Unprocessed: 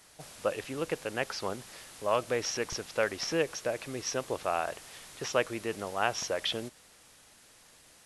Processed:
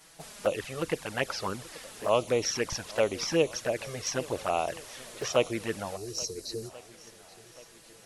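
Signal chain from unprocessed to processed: spectral delete 5.96–6.7, 470–3800 Hz; envelope flanger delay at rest 6.8 ms, full sweep at -26.5 dBFS; swung echo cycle 1.383 s, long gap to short 1.5:1, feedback 40%, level -20.5 dB; gain +5.5 dB

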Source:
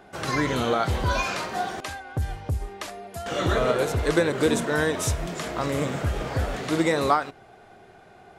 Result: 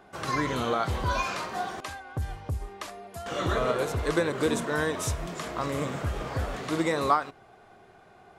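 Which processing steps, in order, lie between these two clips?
bell 1100 Hz +5.5 dB 0.33 oct; gain -4.5 dB

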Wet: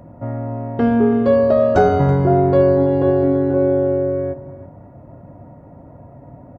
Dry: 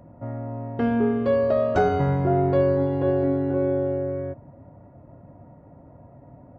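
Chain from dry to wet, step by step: dynamic EQ 2400 Hz, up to -5 dB, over -45 dBFS, Q 1.1; on a send: echo 0.33 s -15.5 dB; on the sum: gain +7 dB

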